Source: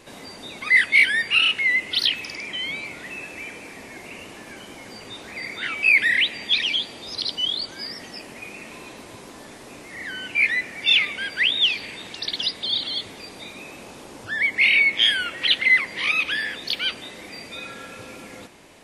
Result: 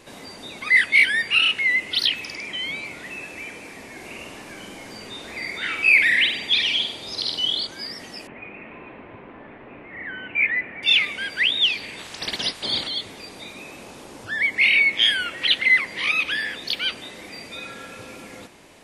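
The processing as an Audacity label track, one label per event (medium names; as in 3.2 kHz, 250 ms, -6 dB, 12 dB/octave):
3.930000	7.670000	flutter echo walls apart 8.2 m, dies away in 0.52 s
8.270000	10.830000	steep low-pass 2.6 kHz
11.970000	12.870000	spectral peaks clipped ceiling under each frame's peak by 15 dB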